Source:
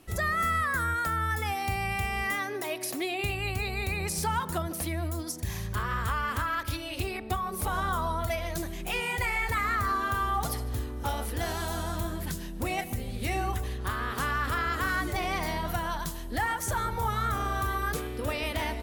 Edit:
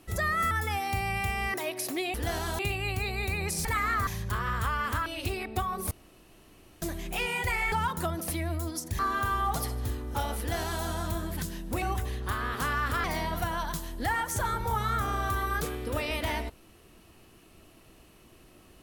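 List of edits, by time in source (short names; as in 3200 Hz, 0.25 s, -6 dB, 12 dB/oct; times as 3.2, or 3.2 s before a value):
0.51–1.26 cut
2.29–2.58 cut
4.24–5.51 swap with 9.46–9.88
6.5–6.8 cut
7.65–8.56 room tone
11.28–11.73 copy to 3.18
12.71–13.4 cut
14.62–15.36 cut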